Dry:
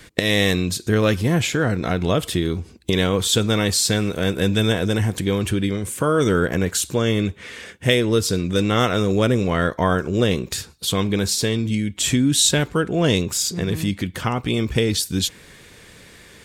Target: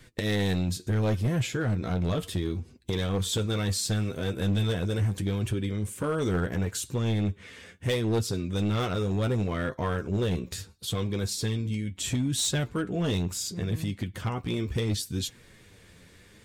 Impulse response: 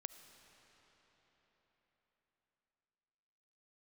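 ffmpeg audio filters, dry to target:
-af "flanger=delay=7.6:depth=4.2:regen=40:speed=0.72:shape=triangular,lowshelf=frequency=230:gain=7.5,asoftclip=type=hard:threshold=-14dB,volume=-7dB"

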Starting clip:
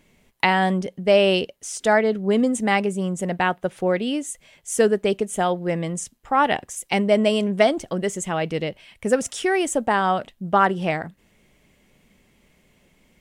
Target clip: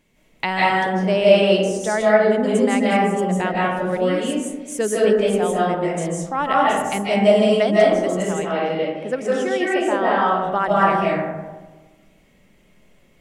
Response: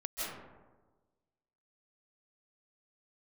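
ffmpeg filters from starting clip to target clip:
-filter_complex "[0:a]asettb=1/sr,asplit=3[link_01][link_02][link_03];[link_01]atrim=end=8.224[link_04];[link_02]atrim=start=8.22:end=10.28,asetpts=PTS-STARTPTS,afade=type=in:duration=0.004:curve=qsin,afade=type=out:start_time=2.056:duration=0.004:curve=qsin,acrossover=split=190 4800:gain=0.2 1 0.251[link_05][link_06][link_07];[link_05][link_06][link_07]amix=inputs=3:normalize=0[link_08];[link_03]atrim=start=10.276[link_09];[link_04][link_08]acrossfade=duration=0.004:curve1=hsin:curve2=qsin[link_10];[link_10][link_09]acrossfade=duration=0.004:curve1=qsin:curve2=hsin[link_11];[1:a]atrim=start_sample=2205[link_12];[link_11][link_12]afir=irnorm=-1:irlink=0,volume=-1dB"

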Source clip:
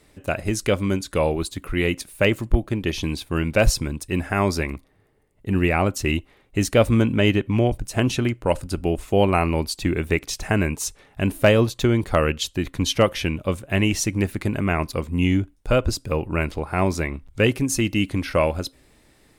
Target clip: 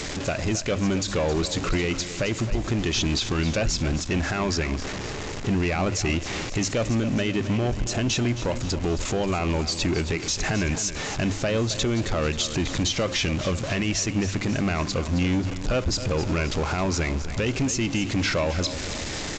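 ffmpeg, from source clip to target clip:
ffmpeg -i in.wav -filter_complex "[0:a]aeval=exprs='val(0)+0.5*0.0237*sgn(val(0))':channel_layout=same,aemphasis=mode=production:type=cd,bandreject=frequency=50:width_type=h:width=6,bandreject=frequency=100:width_type=h:width=6,asplit=2[link_01][link_02];[link_02]acompressor=threshold=-25dB:ratio=6,volume=0dB[link_03];[link_01][link_03]amix=inputs=2:normalize=0,alimiter=limit=-12.5dB:level=0:latency=1:release=134,asoftclip=type=tanh:threshold=-18dB,asplit=2[link_04][link_05];[link_05]aecho=0:1:268|536|804|1072|1340|1608:0.237|0.128|0.0691|0.0373|0.0202|0.0109[link_06];[link_04][link_06]amix=inputs=2:normalize=0,aresample=16000,aresample=44100" out.wav

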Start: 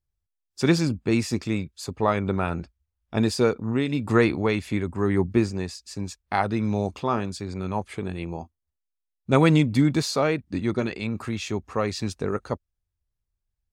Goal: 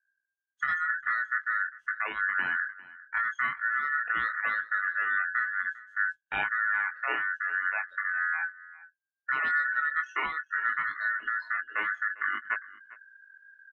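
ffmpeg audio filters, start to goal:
ffmpeg -i in.wav -filter_complex "[0:a]aemphasis=mode=reproduction:type=riaa,afftdn=noise_reduction=26:noise_floor=-29,areverse,acompressor=mode=upward:threshold=-19dB:ratio=2.5,areverse,alimiter=limit=-6dB:level=0:latency=1:release=396,acompressor=threshold=-22dB:ratio=2.5,aeval=exprs='val(0)*sin(2*PI*1600*n/s)':channel_layout=same,flanger=delay=19:depth=4.3:speed=0.48,asplit=2[link_01][link_02];[link_02]aecho=0:1:401:0.106[link_03];[link_01][link_03]amix=inputs=2:normalize=0,adynamicequalizer=threshold=0.00398:dfrequency=5000:dqfactor=0.7:tfrequency=5000:tqfactor=0.7:attack=5:release=100:ratio=0.375:range=3:mode=cutabove:tftype=highshelf" out.wav

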